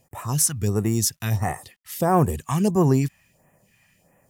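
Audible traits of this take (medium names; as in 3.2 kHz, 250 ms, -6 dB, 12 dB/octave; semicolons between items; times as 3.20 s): a quantiser's noise floor 12-bit, dither none; phasing stages 2, 1.5 Hz, lowest notch 420–4100 Hz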